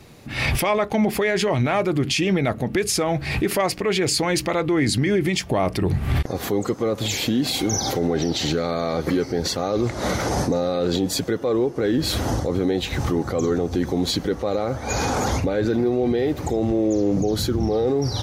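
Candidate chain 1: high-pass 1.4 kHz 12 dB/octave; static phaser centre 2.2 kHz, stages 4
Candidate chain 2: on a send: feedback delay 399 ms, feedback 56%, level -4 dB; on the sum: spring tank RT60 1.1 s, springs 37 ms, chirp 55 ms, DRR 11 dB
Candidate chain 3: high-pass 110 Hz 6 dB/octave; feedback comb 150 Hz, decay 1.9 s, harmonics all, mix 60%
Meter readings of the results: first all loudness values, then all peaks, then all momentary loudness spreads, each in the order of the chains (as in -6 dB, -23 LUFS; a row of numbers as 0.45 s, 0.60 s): -33.0 LUFS, -20.0 LUFS, -30.5 LUFS; -13.0 dBFS, -5.5 dBFS, -17.5 dBFS; 14 LU, 3 LU, 4 LU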